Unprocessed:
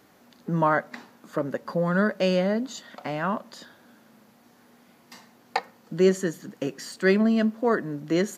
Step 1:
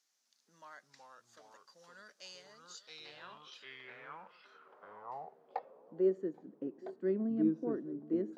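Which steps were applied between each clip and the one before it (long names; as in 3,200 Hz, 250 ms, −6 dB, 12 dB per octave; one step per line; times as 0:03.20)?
delay with pitch and tempo change per echo 255 ms, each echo −3 semitones, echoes 2
delay with a band-pass on its return 820 ms, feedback 51%, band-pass 650 Hz, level −16.5 dB
band-pass filter sweep 6,000 Hz → 310 Hz, 0:02.59–0:06.49
level −8 dB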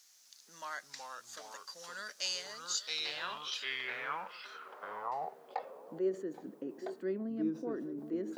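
in parallel at 0 dB: compressor whose output falls as the input rises −46 dBFS, ratio −1
on the sum: spectral tilt +2.5 dB per octave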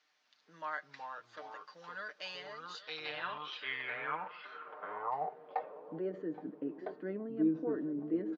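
Bessel low-pass filter 2,200 Hz, order 4
comb filter 6.6 ms, depth 58%
level +1 dB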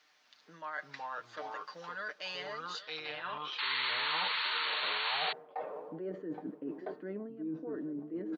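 reversed playback
downward compressor 10 to 1, threshold −44 dBFS, peak gain reduction 18 dB
reversed playback
sound drawn into the spectrogram noise, 0:03.58–0:05.33, 850–4,500 Hz −42 dBFS
level +7.5 dB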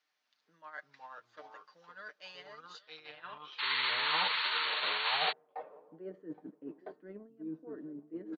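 expander for the loud parts 2.5 to 1, over −44 dBFS
level +3.5 dB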